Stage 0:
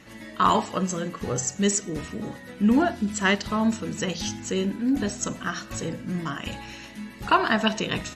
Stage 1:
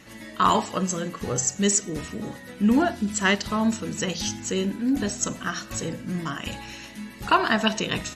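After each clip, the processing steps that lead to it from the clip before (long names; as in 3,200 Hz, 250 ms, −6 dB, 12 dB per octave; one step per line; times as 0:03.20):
high-shelf EQ 4,900 Hz +5.5 dB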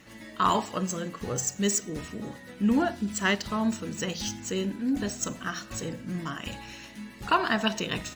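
running median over 3 samples
level −4 dB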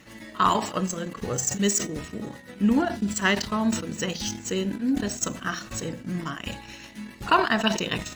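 transient designer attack +2 dB, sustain −11 dB
backwards echo 51 ms −24 dB
level that may fall only so fast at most 100 dB per second
level +2 dB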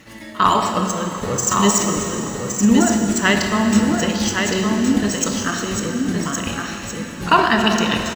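on a send: single-tap delay 1,116 ms −5 dB
on the sum: dense smooth reverb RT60 3.6 s, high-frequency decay 0.9×, DRR 3.5 dB
level +5.5 dB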